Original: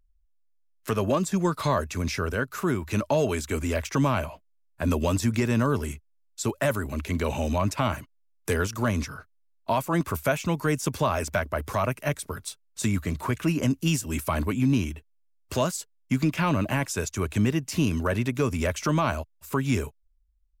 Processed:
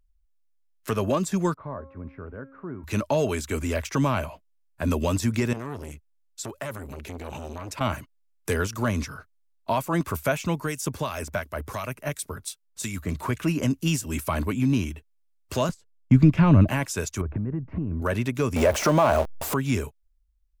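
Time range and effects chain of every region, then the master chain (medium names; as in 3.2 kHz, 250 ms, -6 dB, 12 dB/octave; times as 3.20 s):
1.54–2.84 s: Bessel low-pass 1.1 kHz, order 4 + feedback comb 270 Hz, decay 1.1 s, mix 70%
5.53–7.81 s: compression 2.5:1, threshold -29 dBFS + transformer saturation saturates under 710 Hz
10.58–13.09 s: treble shelf 5.7 kHz +5 dB + harmonic tremolo 2.8 Hz, crossover 1.7 kHz
15.69–16.68 s: RIAA curve playback + gate -36 dBFS, range -15 dB
17.21–18.02 s: low-pass 1.7 kHz 24 dB/octave + tilt EQ -3 dB/octave + compression 12:1, threshold -24 dBFS
18.56–19.54 s: jump at every zero crossing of -28 dBFS + peaking EQ 640 Hz +12 dB 1.6 oct + compression 2.5:1, threshold -16 dBFS
whole clip: none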